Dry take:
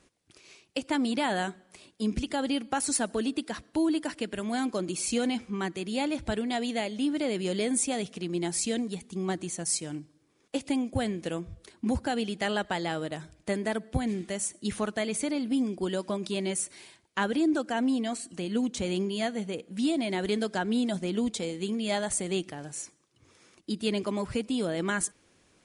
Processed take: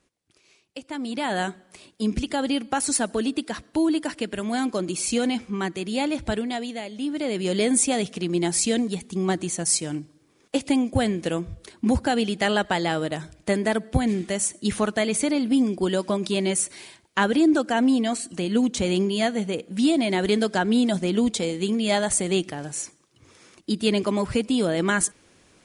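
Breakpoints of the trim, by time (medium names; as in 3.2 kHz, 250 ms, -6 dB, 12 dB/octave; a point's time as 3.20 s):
0.90 s -5.5 dB
1.41 s +4.5 dB
6.35 s +4.5 dB
6.81 s -3 dB
7.62 s +7 dB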